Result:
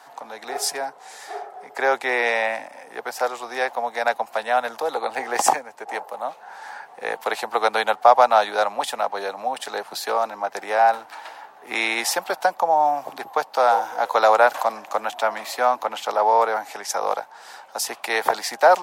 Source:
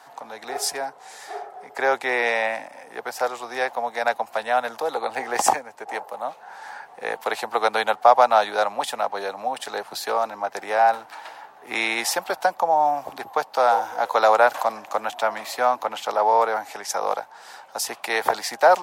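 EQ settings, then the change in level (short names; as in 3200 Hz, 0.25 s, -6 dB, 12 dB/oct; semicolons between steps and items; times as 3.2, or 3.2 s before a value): Bessel high-pass 160 Hz; +1.0 dB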